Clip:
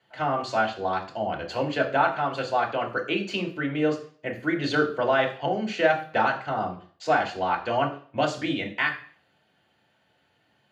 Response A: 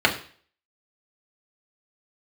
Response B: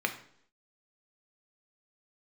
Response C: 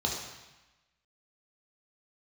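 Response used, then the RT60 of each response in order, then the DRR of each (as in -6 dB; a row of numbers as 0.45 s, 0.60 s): A; 0.45 s, 0.65 s, 1.1 s; -1.0 dB, 4.5 dB, -2.0 dB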